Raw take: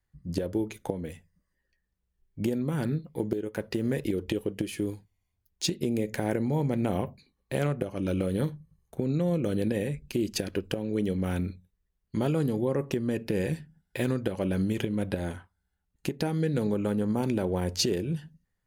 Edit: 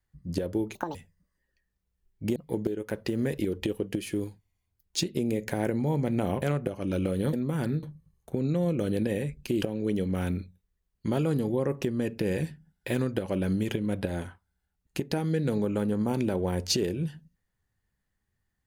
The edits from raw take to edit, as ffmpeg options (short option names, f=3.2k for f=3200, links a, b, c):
-filter_complex "[0:a]asplit=8[a][b][c][d][e][f][g][h];[a]atrim=end=0.754[i];[b]atrim=start=0.75:end=1.11,asetpts=PTS-STARTPTS,asetrate=79821,aresample=44100,atrim=end_sample=8771,asetpts=PTS-STARTPTS[j];[c]atrim=start=1.106:end=2.522[k];[d]atrim=start=3.018:end=7.082[l];[e]atrim=start=7.568:end=8.482[m];[f]atrim=start=2.518:end=3.022[n];[g]atrim=start=8.478:end=10.272[o];[h]atrim=start=10.708[p];[i][j]acrossfade=d=0.004:c1=hsin:c2=hsin[q];[q][k]acrossfade=d=0.004:c1=hsin:c2=hsin[r];[r][l]acrossfade=d=0.004:c1=hsin:c2=hsin[s];[s][m]acrossfade=d=0.004:c1=hsin:c2=hsin[t];[t][n]acrossfade=d=0.004:c1=hsin:c2=hsin[u];[u][o]acrossfade=d=0.004:c1=hsin:c2=hsin[v];[v][p]acrossfade=d=0.004:c1=hsin:c2=hsin"